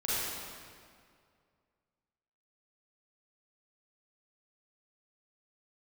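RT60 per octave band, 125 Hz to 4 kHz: 2.4, 2.2, 2.2, 2.1, 1.9, 1.6 seconds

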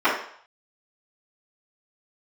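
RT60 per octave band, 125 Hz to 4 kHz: 0.60, 0.45, 0.55, 0.65, 0.60, 0.60 seconds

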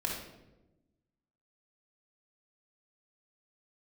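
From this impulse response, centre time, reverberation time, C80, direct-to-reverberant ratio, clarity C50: 45 ms, 1.0 s, 6.0 dB, −1.0 dB, 2.0 dB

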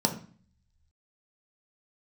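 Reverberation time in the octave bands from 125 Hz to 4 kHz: 1.1, 0.70, 0.40, 0.45, 0.45, 0.45 seconds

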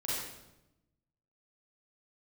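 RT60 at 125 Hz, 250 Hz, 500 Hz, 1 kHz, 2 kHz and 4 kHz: 1.4, 1.3, 1.0, 0.85, 0.75, 0.75 seconds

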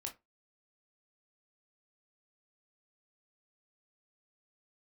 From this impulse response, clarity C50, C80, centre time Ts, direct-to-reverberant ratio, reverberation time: 14.0 dB, 24.5 dB, 14 ms, 1.5 dB, 0.20 s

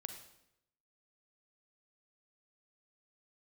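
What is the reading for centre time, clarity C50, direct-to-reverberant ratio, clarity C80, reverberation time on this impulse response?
19 ms, 7.5 dB, 6.0 dB, 10.0 dB, 0.80 s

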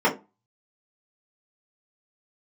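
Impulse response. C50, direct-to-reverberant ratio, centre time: 12.5 dB, −7.0 dB, 16 ms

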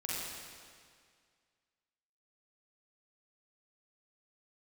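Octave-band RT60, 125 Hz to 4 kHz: 2.0, 2.0, 2.0, 2.0, 2.0, 1.9 seconds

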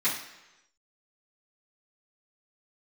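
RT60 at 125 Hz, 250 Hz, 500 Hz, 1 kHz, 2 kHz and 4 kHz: 0.90, 0.85, 1.0, 1.0, 1.0, 0.95 seconds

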